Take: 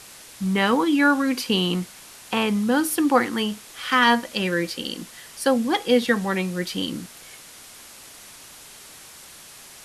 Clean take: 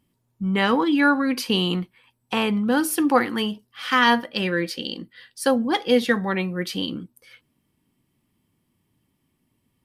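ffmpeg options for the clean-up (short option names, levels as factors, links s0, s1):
-af "afwtdn=0.0079"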